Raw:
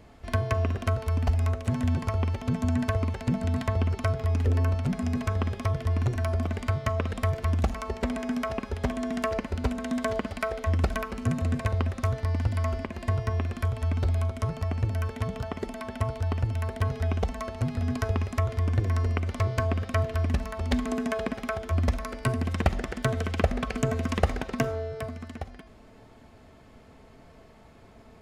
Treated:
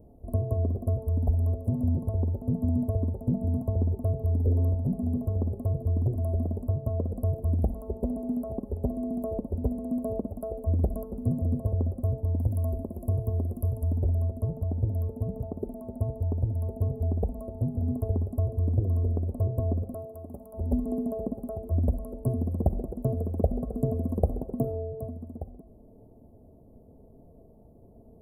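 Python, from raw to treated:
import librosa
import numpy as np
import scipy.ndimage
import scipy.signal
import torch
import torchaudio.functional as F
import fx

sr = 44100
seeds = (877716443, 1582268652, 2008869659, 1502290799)

y = fx.high_shelf(x, sr, hz=4100.0, db=11.0, at=(12.39, 13.98))
y = fx.highpass(y, sr, hz=760.0, slope=6, at=(19.94, 20.54))
y = scipy.signal.sosfilt(scipy.signal.cheby2(4, 80, [2100.0, 4400.0], 'bandstop', fs=sr, output='sos'), y)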